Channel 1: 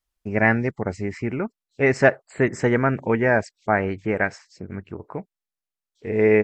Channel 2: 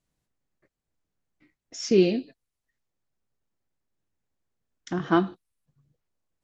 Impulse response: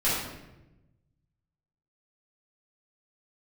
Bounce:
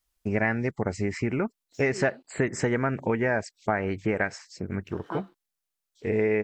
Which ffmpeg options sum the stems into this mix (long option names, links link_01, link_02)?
-filter_complex "[0:a]highshelf=frequency=4300:gain=5.5,volume=2dB[link_01];[1:a]highpass=190,aeval=exprs='sgn(val(0))*max(abs(val(0))-0.00316,0)':channel_layout=same,volume=-13dB[link_02];[link_01][link_02]amix=inputs=2:normalize=0,acompressor=threshold=-23dB:ratio=4"